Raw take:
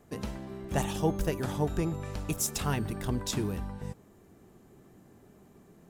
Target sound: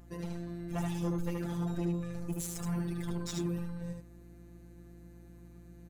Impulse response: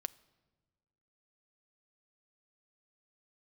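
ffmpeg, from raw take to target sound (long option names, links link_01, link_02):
-filter_complex "[0:a]asettb=1/sr,asplit=3[link_01][link_02][link_03];[link_01]atrim=end=2.124[link_04];[link_02]atrim=start=2.12:end=2.79,asetpts=PTS-STARTPTS,afade=type=in:duration=0.004:curve=qsin,afade=type=out:start_time=0.666:duration=0.004:curve=qsin,equalizer=frequency=3200:width=1.1:gain=-13.5[link_05];[link_03]atrim=start=2.786[link_06];[link_04][link_05]acrossfade=duration=0.004:curve1=hsin:curve2=qsin[link_07];[link_07][link_06]acrossfade=duration=0.004:curve1=qsin:curve2=hsin,afftfilt=real='hypot(re,im)*cos(PI*b)':imag='0':win_size=1024:overlap=0.75,asoftclip=type=tanh:threshold=-29dB,aecho=1:1:75:0.668,aeval=exprs='val(0)+0.00224*(sin(2*PI*60*n/s)+sin(2*PI*2*60*n/s)/2+sin(2*PI*3*60*n/s)/3+sin(2*PI*4*60*n/s)/4+sin(2*PI*5*60*n/s)/5)':channel_layout=same"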